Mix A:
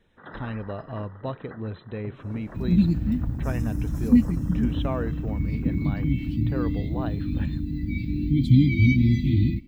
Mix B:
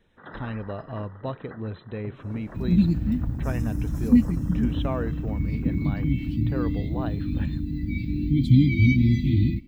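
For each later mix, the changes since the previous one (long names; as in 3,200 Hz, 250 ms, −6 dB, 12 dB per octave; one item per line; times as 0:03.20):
nothing changed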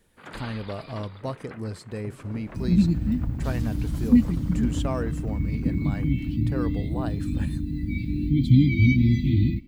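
speech: remove linear-phase brick-wall low-pass 4,100 Hz
first sound: remove linear-phase brick-wall band-stop 2,000–5,000 Hz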